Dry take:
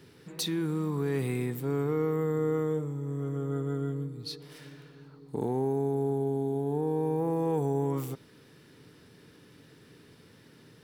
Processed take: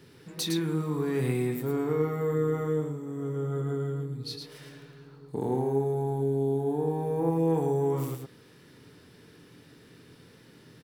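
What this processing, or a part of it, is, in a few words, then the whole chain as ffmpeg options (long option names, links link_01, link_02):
slapback doubling: -filter_complex "[0:a]asplit=3[link_01][link_02][link_03];[link_02]adelay=24,volume=-8.5dB[link_04];[link_03]adelay=110,volume=-4.5dB[link_05];[link_01][link_04][link_05]amix=inputs=3:normalize=0"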